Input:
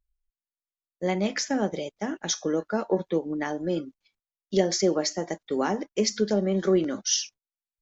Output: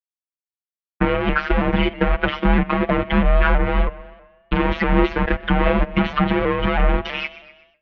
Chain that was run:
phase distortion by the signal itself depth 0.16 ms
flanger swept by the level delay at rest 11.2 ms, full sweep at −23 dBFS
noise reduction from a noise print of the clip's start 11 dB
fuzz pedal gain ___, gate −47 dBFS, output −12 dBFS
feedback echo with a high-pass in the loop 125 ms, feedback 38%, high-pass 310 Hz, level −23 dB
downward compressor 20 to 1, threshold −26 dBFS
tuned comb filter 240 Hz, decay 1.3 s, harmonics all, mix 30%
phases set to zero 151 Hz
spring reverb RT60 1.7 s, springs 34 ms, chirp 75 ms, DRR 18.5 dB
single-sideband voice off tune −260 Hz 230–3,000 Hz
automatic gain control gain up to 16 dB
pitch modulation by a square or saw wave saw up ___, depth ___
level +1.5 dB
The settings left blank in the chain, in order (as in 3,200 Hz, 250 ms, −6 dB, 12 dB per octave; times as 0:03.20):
48 dB, 3.1 Hz, 100 cents